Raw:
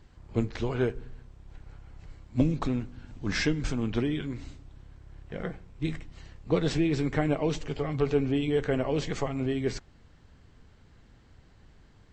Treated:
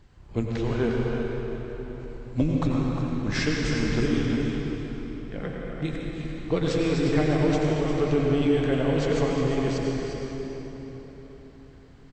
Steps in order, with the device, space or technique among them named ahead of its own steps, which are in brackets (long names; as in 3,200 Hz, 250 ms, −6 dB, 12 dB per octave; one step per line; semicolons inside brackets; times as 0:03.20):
cave (single-tap delay 355 ms −9.5 dB; convolution reverb RT60 4.3 s, pre-delay 83 ms, DRR −1.5 dB)